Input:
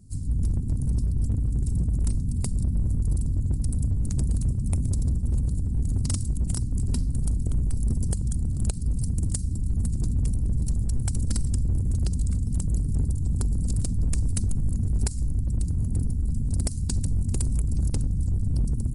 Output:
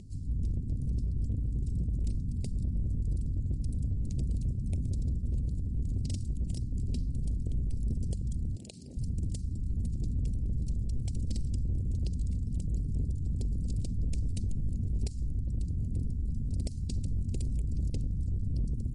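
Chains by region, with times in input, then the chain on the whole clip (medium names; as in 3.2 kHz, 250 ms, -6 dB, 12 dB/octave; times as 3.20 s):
8.56–8.97 s: frequency weighting A + level flattener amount 50%
whole clip: Chebyshev band-stop 560–2700 Hz, order 2; upward compressor, threshold -34 dBFS; low-pass 5.2 kHz 12 dB/octave; trim -6 dB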